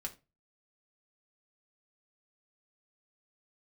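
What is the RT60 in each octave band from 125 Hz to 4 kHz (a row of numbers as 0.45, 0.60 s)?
0.40, 0.30, 0.30, 0.25, 0.25, 0.20 s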